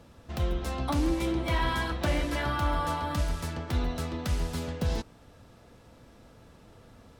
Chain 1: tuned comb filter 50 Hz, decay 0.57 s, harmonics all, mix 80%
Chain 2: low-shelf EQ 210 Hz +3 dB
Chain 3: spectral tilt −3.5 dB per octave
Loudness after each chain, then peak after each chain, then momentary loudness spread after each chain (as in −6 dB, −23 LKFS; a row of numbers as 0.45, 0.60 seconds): −38.0, −29.0, −20.5 LKFS; −23.0, −15.5, −5.0 dBFS; 5, 5, 4 LU